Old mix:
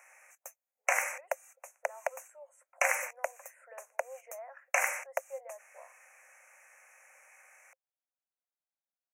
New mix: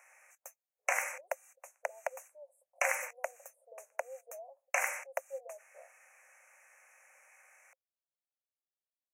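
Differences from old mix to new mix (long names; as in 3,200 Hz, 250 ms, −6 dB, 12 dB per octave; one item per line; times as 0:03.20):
speech: add inverse Chebyshev band-stop filter 1,400–5,300 Hz, stop band 50 dB
background −3.0 dB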